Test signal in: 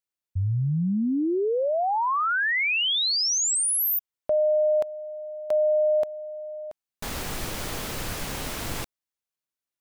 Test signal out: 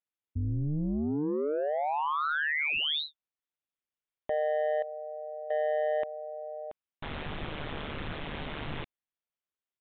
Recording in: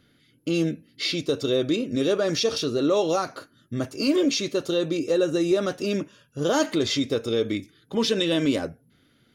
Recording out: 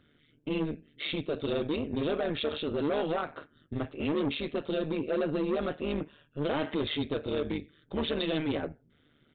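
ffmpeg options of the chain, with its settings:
ffmpeg -i in.wav -af "aresample=8000,asoftclip=type=tanh:threshold=-22dB,aresample=44100,tremolo=f=150:d=0.824" out.wav

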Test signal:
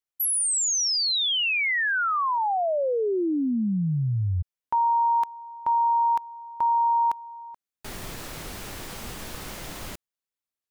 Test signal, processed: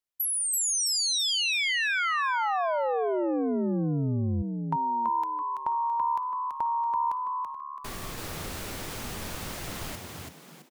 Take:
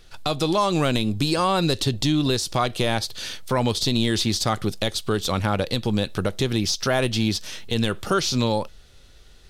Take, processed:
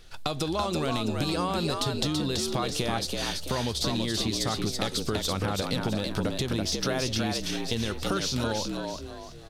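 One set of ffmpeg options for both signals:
ffmpeg -i in.wav -filter_complex "[0:a]acompressor=threshold=-26dB:ratio=6:attack=15:release=217:knee=1:detection=peak,asplit=6[link_01][link_02][link_03][link_04][link_05][link_06];[link_02]adelay=332,afreqshift=72,volume=-4dB[link_07];[link_03]adelay=664,afreqshift=144,volume=-12.9dB[link_08];[link_04]adelay=996,afreqshift=216,volume=-21.7dB[link_09];[link_05]adelay=1328,afreqshift=288,volume=-30.6dB[link_10];[link_06]adelay=1660,afreqshift=360,volume=-39.5dB[link_11];[link_01][link_07][link_08][link_09][link_10][link_11]amix=inputs=6:normalize=0,volume=-1dB" out.wav

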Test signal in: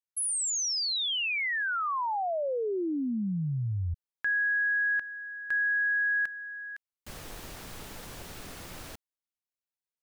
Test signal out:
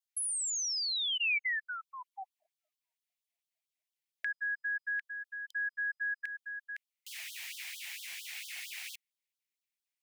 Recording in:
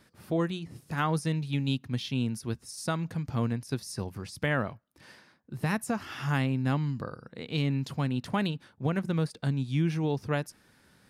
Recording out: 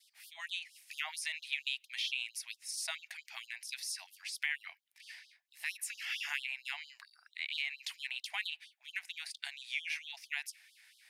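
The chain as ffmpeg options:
ffmpeg -i in.wav -filter_complex "[0:a]highshelf=frequency=1600:width_type=q:width=3:gain=9,acrossover=split=160[link_01][link_02];[link_02]acompressor=threshold=-26dB:ratio=5:attack=7.5:release=143:knee=2.83:detection=peak[link_03];[link_01][link_03]amix=inputs=2:normalize=0,adynamicequalizer=threshold=0.00794:dfrequency=2400:dqfactor=2.3:tfrequency=2400:tqfactor=2.3:attack=5:release=100:ratio=0.4:range=2:mode=boostabove:tftype=bell,afftfilt=real='re*gte(b*sr/1024,610*pow(3100/610,0.5+0.5*sin(2*PI*4.4*pts/sr)))':imag='im*gte(b*sr/1024,610*pow(3100/610,0.5+0.5*sin(2*PI*4.4*pts/sr)))':win_size=1024:overlap=0.75,volume=-7.5dB" out.wav

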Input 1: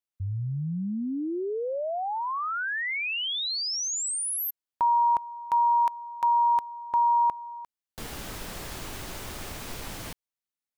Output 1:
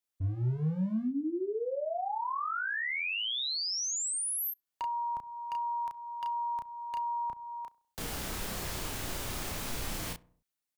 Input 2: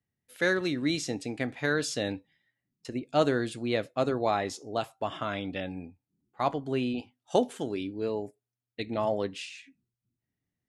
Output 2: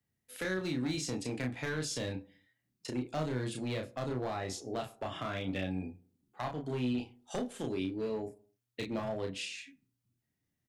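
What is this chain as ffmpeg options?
ffmpeg -i in.wav -filter_complex "[0:a]highshelf=frequency=4900:gain=3,acrossover=split=170[link_01][link_02];[link_02]acompressor=threshold=-34dB:ratio=6:attack=12:release=433:knee=6:detection=peak[link_03];[link_01][link_03]amix=inputs=2:normalize=0,volume=30.5dB,asoftclip=hard,volume=-30.5dB,asplit=2[link_04][link_05];[link_05]adelay=32,volume=-3.5dB[link_06];[link_04][link_06]amix=inputs=2:normalize=0,asplit=2[link_07][link_08];[link_08]adelay=66,lowpass=frequency=1300:poles=1,volume=-20dB,asplit=2[link_09][link_10];[link_10]adelay=66,lowpass=frequency=1300:poles=1,volume=0.55,asplit=2[link_11][link_12];[link_12]adelay=66,lowpass=frequency=1300:poles=1,volume=0.55,asplit=2[link_13][link_14];[link_14]adelay=66,lowpass=frequency=1300:poles=1,volume=0.55[link_15];[link_07][link_09][link_11][link_13][link_15]amix=inputs=5:normalize=0" out.wav

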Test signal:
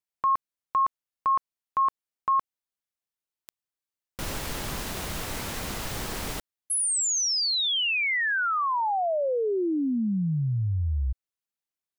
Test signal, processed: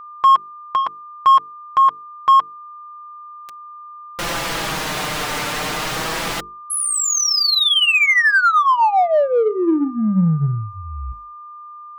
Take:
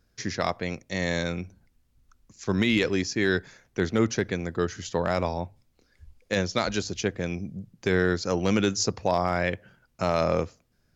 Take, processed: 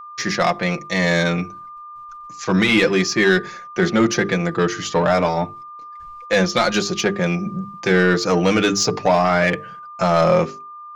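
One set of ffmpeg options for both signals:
ffmpeg -i in.wav -filter_complex "[0:a]agate=range=-33dB:threshold=-59dB:ratio=3:release=61:detection=rms,bandreject=frequency=50:width_type=h:width=6,bandreject=frequency=100:width_type=h:width=6,bandreject=frequency=150:width_type=h:width=6,bandreject=frequency=200:width_type=h:width=6,bandreject=frequency=250:width_type=h:width=6,bandreject=frequency=300:width_type=h:width=6,bandreject=frequency=350:width_type=h:width=6,bandreject=frequency=400:width_type=h:width=6,bandreject=frequency=450:width_type=h:width=6,adynamicequalizer=threshold=0.00891:dfrequency=160:dqfactor=1:tfrequency=160:tqfactor=1:attack=5:release=100:ratio=0.375:range=3:mode=boostabove:tftype=bell,asplit=2[link_01][link_02];[link_02]highpass=frequency=720:poles=1,volume=14dB,asoftclip=type=tanh:threshold=-9dB[link_03];[link_01][link_03]amix=inputs=2:normalize=0,lowpass=frequency=3500:poles=1,volume=-6dB,flanger=delay=5.4:depth=1.3:regen=-8:speed=0.28:shape=sinusoidal,aeval=exprs='val(0)+0.00631*sin(2*PI*1200*n/s)':channel_layout=same,asplit=2[link_04][link_05];[link_05]asoftclip=type=tanh:threshold=-29dB,volume=-9dB[link_06];[link_04][link_06]amix=inputs=2:normalize=0,volume=7dB" out.wav

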